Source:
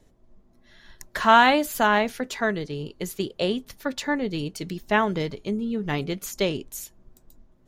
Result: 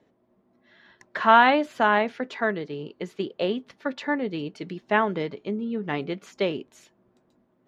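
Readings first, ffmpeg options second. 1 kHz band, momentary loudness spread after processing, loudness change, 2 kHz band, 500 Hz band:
0.0 dB, 17 LU, −0.5 dB, −0.5 dB, 0.0 dB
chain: -af "highpass=200,lowpass=2800"

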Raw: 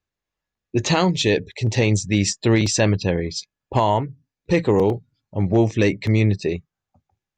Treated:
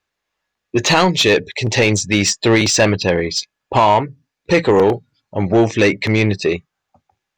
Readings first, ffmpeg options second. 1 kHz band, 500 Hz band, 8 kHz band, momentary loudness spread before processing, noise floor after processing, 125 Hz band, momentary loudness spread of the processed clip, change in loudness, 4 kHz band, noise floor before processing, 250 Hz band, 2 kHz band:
+7.5 dB, +5.5 dB, +6.5 dB, 9 LU, −79 dBFS, −0.5 dB, 10 LU, +5.0 dB, +8.0 dB, below −85 dBFS, +3.0 dB, +9.0 dB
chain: -filter_complex "[0:a]asplit=2[link_01][link_02];[link_02]highpass=frequency=720:poles=1,volume=14dB,asoftclip=type=tanh:threshold=-6dB[link_03];[link_01][link_03]amix=inputs=2:normalize=0,lowpass=frequency=4500:poles=1,volume=-6dB,volume=3.5dB"

